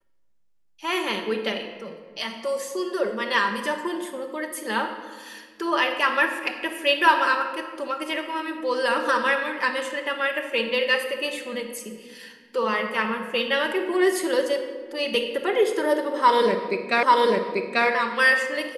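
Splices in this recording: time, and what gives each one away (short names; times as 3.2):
17.03 repeat of the last 0.84 s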